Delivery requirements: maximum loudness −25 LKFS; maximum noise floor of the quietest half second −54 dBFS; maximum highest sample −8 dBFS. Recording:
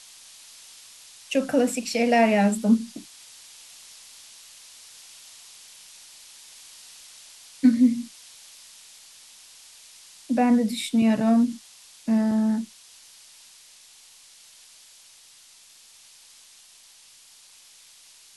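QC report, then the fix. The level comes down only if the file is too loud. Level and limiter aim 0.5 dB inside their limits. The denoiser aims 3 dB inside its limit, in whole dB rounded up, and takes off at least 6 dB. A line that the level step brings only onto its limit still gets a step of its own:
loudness −22.5 LKFS: out of spec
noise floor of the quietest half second −52 dBFS: out of spec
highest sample −7.5 dBFS: out of spec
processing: level −3 dB

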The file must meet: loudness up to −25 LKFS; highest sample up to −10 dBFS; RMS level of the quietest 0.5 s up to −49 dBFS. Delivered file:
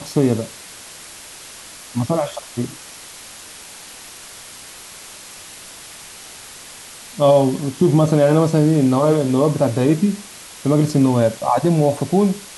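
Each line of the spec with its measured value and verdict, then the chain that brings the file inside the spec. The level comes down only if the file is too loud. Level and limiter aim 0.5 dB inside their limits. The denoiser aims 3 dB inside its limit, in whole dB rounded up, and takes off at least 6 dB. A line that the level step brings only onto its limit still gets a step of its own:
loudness −17.5 LKFS: out of spec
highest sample −5.0 dBFS: out of spec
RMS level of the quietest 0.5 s −38 dBFS: out of spec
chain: broadband denoise 6 dB, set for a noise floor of −38 dBFS
level −8 dB

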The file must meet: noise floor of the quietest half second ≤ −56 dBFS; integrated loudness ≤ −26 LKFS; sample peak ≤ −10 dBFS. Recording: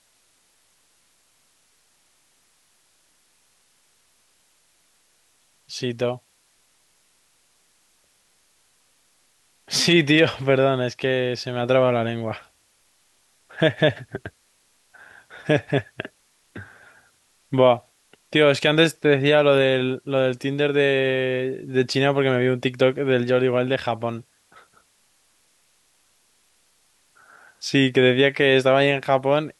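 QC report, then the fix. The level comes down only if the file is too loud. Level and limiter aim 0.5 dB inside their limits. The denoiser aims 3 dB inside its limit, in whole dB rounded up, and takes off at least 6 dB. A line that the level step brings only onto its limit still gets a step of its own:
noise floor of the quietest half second −63 dBFS: in spec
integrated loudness −20.5 LKFS: out of spec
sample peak −4.5 dBFS: out of spec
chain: level −6 dB

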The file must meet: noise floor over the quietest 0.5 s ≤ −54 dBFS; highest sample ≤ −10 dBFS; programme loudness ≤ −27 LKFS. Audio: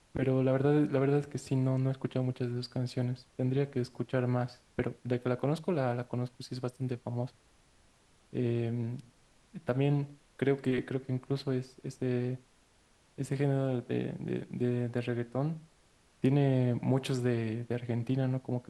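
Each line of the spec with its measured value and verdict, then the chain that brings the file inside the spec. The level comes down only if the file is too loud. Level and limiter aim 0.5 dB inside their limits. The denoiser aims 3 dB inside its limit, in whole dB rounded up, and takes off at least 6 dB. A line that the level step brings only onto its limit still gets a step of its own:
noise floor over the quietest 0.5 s −66 dBFS: in spec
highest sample −15.0 dBFS: in spec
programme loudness −32.5 LKFS: in spec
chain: no processing needed

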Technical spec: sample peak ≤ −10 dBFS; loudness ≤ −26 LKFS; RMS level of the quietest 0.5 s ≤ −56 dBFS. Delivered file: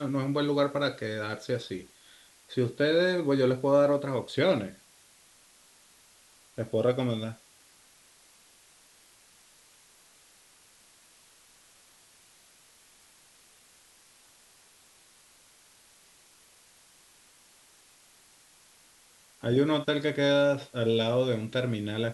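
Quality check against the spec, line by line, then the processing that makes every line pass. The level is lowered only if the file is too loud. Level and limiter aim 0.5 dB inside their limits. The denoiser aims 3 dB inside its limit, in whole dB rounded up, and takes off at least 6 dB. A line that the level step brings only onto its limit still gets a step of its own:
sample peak −13.0 dBFS: in spec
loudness −28.0 LKFS: in spec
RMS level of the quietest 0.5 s −59 dBFS: in spec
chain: no processing needed

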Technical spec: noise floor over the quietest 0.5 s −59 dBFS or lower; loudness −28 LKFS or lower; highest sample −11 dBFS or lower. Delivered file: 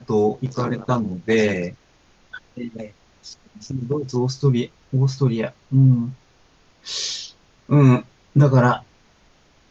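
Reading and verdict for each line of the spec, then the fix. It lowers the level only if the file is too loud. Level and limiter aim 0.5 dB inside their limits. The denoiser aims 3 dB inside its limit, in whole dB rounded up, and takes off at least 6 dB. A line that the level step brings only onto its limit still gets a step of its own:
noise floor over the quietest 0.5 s −56 dBFS: out of spec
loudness −20.5 LKFS: out of spec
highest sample −3.5 dBFS: out of spec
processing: level −8 dB

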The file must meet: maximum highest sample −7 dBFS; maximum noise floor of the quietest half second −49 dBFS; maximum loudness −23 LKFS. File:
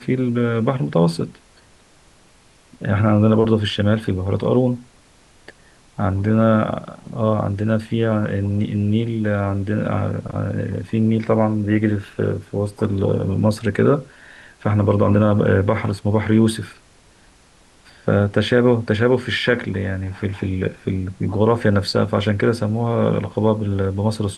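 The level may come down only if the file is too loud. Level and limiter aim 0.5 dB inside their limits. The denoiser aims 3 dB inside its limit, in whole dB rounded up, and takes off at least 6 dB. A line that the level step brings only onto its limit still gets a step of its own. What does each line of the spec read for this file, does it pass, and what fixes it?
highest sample −3.5 dBFS: out of spec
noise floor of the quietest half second −52 dBFS: in spec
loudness −19.5 LKFS: out of spec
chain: level −4 dB

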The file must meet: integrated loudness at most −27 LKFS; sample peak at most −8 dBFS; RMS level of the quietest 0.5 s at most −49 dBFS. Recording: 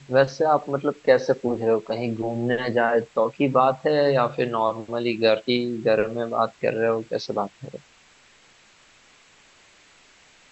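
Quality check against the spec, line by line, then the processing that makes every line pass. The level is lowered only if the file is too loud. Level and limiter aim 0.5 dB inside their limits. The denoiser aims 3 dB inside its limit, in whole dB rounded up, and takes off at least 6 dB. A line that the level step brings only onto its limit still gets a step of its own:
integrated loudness −23.0 LKFS: out of spec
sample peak −5.5 dBFS: out of spec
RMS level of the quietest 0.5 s −55 dBFS: in spec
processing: level −4.5 dB

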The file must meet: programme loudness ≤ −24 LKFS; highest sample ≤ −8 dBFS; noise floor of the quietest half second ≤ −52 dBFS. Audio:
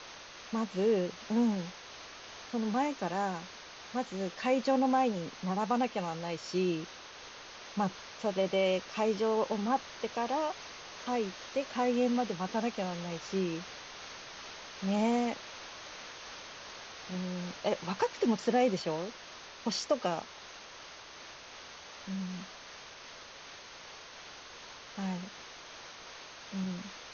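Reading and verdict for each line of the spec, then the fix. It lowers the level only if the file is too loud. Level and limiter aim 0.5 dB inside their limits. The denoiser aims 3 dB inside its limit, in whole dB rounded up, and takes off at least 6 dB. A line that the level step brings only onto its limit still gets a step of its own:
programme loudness −33.5 LKFS: in spec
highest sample −16.0 dBFS: in spec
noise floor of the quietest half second −49 dBFS: out of spec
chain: broadband denoise 6 dB, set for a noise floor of −49 dBFS

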